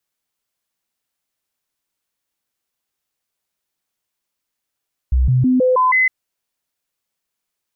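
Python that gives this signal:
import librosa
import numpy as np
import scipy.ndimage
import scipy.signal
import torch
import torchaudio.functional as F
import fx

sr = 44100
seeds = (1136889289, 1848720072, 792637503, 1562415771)

y = fx.stepped_sweep(sr, from_hz=63.6, direction='up', per_octave=1, tones=6, dwell_s=0.16, gap_s=0.0, level_db=-11.0)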